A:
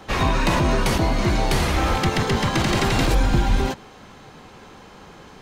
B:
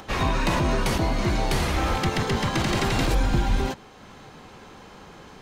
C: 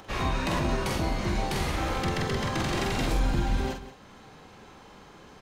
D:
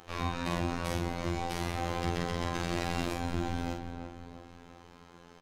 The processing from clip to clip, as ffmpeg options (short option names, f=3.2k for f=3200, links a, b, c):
-af "acompressor=mode=upward:threshold=-36dB:ratio=2.5,volume=-3.5dB"
-filter_complex "[0:a]asplit=2[a][b];[b]adelay=46,volume=-4.5dB[c];[a][c]amix=inputs=2:normalize=0,aecho=1:1:178:0.188,volume=-6dB"
-filter_complex "[0:a]volume=18dB,asoftclip=hard,volume=-18dB,asplit=2[a][b];[b]adelay=336,lowpass=f=1.7k:p=1,volume=-6.5dB,asplit=2[c][d];[d]adelay=336,lowpass=f=1.7k:p=1,volume=0.46,asplit=2[e][f];[f]adelay=336,lowpass=f=1.7k:p=1,volume=0.46,asplit=2[g][h];[h]adelay=336,lowpass=f=1.7k:p=1,volume=0.46,asplit=2[i][j];[j]adelay=336,lowpass=f=1.7k:p=1,volume=0.46[k];[a][c][e][g][i][k]amix=inputs=6:normalize=0,afftfilt=real='hypot(re,im)*cos(PI*b)':imag='0':win_size=2048:overlap=0.75,volume=-2.5dB"